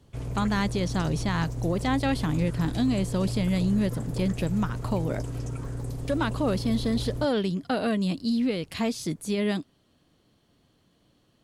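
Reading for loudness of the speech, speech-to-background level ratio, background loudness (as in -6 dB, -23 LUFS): -28.0 LUFS, 6.0 dB, -34.0 LUFS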